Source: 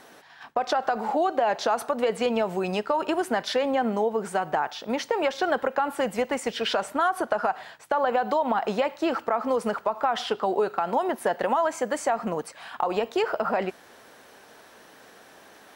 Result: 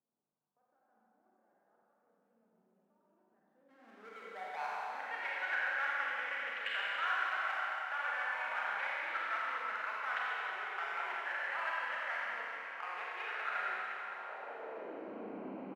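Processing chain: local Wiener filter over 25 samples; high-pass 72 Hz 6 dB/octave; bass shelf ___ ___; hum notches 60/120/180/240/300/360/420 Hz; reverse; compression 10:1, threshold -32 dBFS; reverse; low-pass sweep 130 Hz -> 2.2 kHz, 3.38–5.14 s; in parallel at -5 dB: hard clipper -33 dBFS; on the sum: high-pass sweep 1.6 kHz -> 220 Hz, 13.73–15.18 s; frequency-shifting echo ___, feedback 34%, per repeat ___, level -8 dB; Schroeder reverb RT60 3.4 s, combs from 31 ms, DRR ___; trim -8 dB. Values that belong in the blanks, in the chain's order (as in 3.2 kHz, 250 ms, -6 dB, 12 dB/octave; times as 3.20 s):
320 Hz, +9 dB, 84 ms, +39 Hz, -6 dB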